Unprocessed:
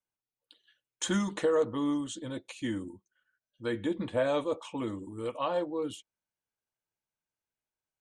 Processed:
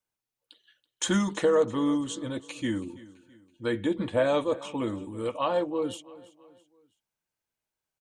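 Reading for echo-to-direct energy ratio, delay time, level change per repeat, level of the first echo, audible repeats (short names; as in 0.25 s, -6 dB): -18.5 dB, 0.33 s, -7.5 dB, -19.5 dB, 3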